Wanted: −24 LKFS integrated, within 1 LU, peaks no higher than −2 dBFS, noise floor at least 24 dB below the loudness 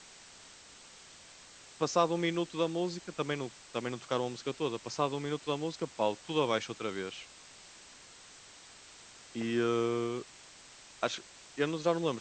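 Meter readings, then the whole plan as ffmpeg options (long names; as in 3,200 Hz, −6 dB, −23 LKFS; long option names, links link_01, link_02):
background noise floor −55 dBFS; target noise floor −58 dBFS; integrated loudness −34.0 LKFS; sample peak −14.5 dBFS; target loudness −24.0 LKFS
→ -af "afftdn=noise_reduction=6:noise_floor=-55"
-af "volume=10dB"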